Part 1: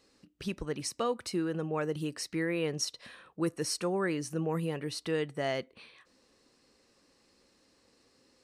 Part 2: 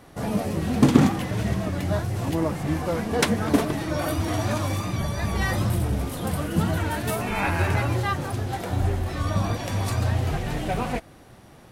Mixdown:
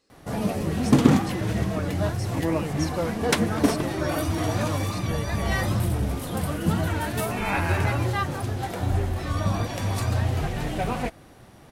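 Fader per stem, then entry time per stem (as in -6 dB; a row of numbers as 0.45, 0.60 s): -3.5, -0.5 dB; 0.00, 0.10 s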